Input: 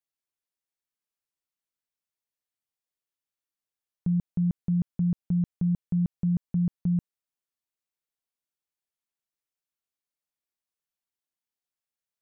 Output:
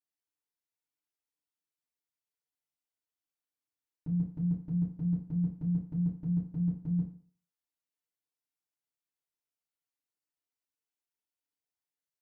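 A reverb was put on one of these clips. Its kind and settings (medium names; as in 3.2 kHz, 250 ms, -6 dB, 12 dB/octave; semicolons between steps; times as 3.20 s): FDN reverb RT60 0.47 s, low-frequency decay 0.9×, high-frequency decay 0.8×, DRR -8 dB; trim -13 dB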